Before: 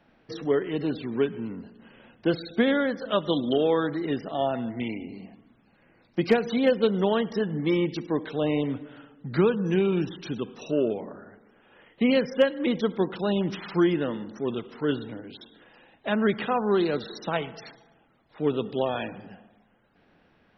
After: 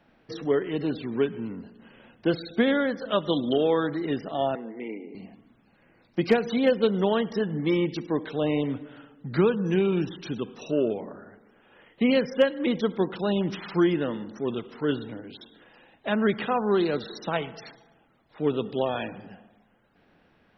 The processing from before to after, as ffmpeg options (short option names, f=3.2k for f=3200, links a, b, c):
-filter_complex "[0:a]asettb=1/sr,asplit=3[a][b][c];[a]atrim=end=4.554[d];[b]atrim=start=4.55:end=5.15,asetpts=PTS-STARTPTS,afade=t=in:d=0.004:c=qsin,afade=t=out:st=0.596:d=0.004:c=qsin,highpass=f=230:w=0.5412,highpass=f=230:w=1.3066,equalizer=f=250:t=q:w=4:g=-7,equalizer=f=440:t=q:w=4:g=6,equalizer=f=670:t=q:w=4:g=-7,equalizer=f=960:t=q:w=4:g=-3,equalizer=f=1.4k:t=q:w=4:g=-9,lowpass=f=2.1k:w=0.5412,lowpass=f=2.1k:w=1.3066[e];[c]atrim=start=5.146[f];[d][e]acrossfade=d=0.004:c1=hsin:c2=qsin[g];[g][f]acrossfade=d=0.004:c1=qsin:c2=hsin"